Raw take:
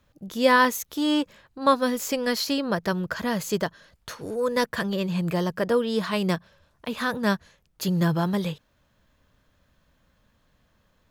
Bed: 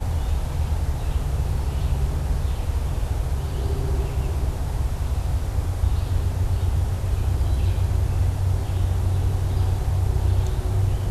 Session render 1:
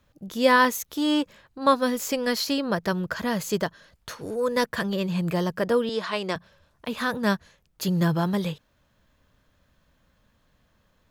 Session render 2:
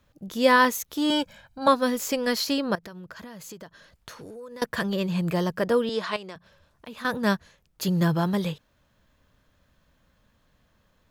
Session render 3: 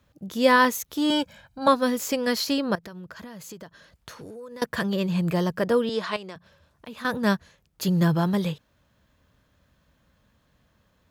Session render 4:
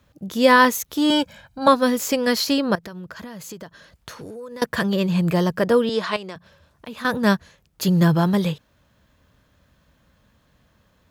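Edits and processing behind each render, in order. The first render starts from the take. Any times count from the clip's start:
0:05.89–0:06.36: band-pass filter 340–7,100 Hz
0:01.10–0:01.68: comb filter 1.3 ms, depth 88%; 0:02.75–0:04.62: downward compressor 10 to 1, threshold −38 dBFS; 0:06.16–0:07.05: downward compressor 2 to 1, threshold −45 dBFS
high-pass filter 49 Hz; low-shelf EQ 220 Hz +3 dB
level +4.5 dB; brickwall limiter −3 dBFS, peak gain reduction 1.5 dB

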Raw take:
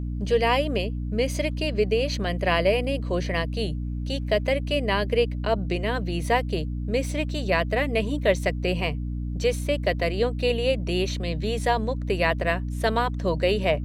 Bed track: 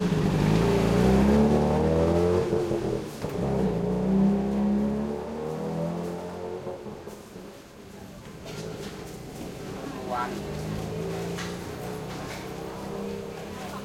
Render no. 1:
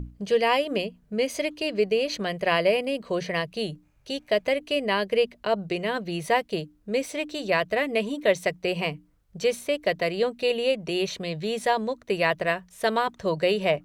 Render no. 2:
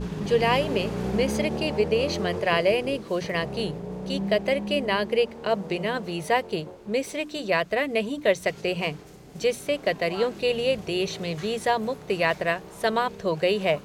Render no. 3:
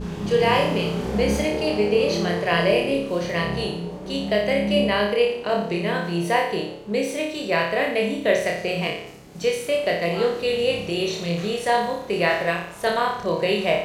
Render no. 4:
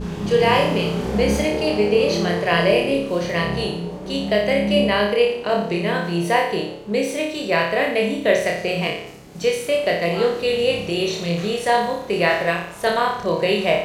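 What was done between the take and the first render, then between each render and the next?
mains-hum notches 60/120/180/240/300 Hz
mix in bed track −8 dB
flutter between parallel walls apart 5 metres, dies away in 0.61 s
level +2.5 dB

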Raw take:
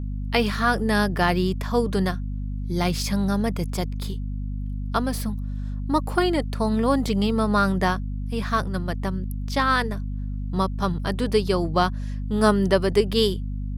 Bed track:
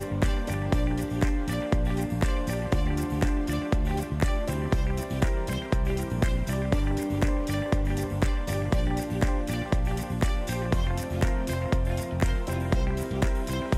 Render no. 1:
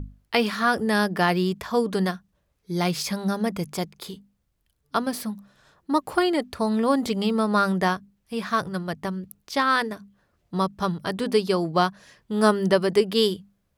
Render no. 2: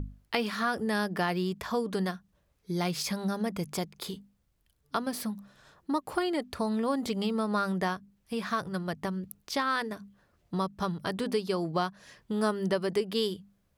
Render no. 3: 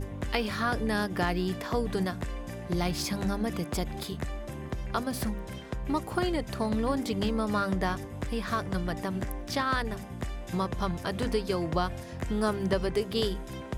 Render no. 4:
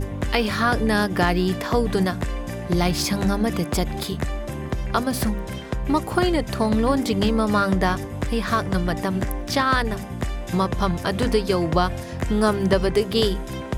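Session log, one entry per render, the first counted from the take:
mains-hum notches 50/100/150/200/250 Hz
downward compressor 2 to 1, threshold −32 dBFS, peak gain reduction 10.5 dB
mix in bed track −10 dB
level +8.5 dB; brickwall limiter −3 dBFS, peak gain reduction 1.5 dB

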